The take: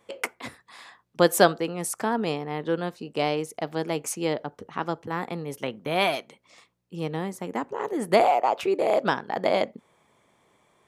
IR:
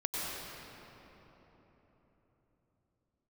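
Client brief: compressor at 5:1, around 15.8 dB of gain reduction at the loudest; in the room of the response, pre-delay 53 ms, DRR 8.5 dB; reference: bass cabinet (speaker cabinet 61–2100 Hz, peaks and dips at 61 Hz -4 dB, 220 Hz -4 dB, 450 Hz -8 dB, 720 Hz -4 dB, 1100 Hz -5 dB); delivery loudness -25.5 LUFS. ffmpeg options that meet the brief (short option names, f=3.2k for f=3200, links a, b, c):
-filter_complex "[0:a]acompressor=threshold=-31dB:ratio=5,asplit=2[a][b];[1:a]atrim=start_sample=2205,adelay=53[c];[b][c]afir=irnorm=-1:irlink=0,volume=-14.5dB[d];[a][d]amix=inputs=2:normalize=0,highpass=f=61:w=0.5412,highpass=f=61:w=1.3066,equalizer=f=61:t=q:w=4:g=-4,equalizer=f=220:t=q:w=4:g=-4,equalizer=f=450:t=q:w=4:g=-8,equalizer=f=720:t=q:w=4:g=-4,equalizer=f=1.1k:t=q:w=4:g=-5,lowpass=f=2.1k:w=0.5412,lowpass=f=2.1k:w=1.3066,volume=14dB"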